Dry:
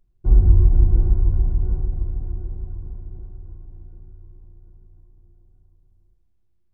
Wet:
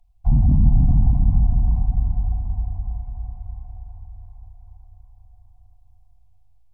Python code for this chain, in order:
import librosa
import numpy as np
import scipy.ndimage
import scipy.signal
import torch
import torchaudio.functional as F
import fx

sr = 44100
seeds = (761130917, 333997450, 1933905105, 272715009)

p1 = scipy.signal.sosfilt(scipy.signal.cheby2(4, 50, [160.0, 420.0], 'bandstop', fs=sr, output='sos'), x)
p2 = 10.0 ** (-13.0 / 20.0) * np.tanh(p1 / 10.0 ** (-13.0 / 20.0))
p3 = p1 + (p2 * librosa.db_to_amplitude(-4.5))
p4 = fx.low_shelf(p3, sr, hz=130.0, db=-10.5)
p5 = fx.fold_sine(p4, sr, drive_db=7, ceiling_db=-11.0)
p6 = fx.curve_eq(p5, sr, hz=(110.0, 270.0, 420.0, 720.0, 1600.0, 2300.0), db=(0, 3, -24, 3, -25, -11))
y = p6 + fx.echo_feedback(p6, sr, ms=393, feedback_pct=54, wet_db=-6.5, dry=0)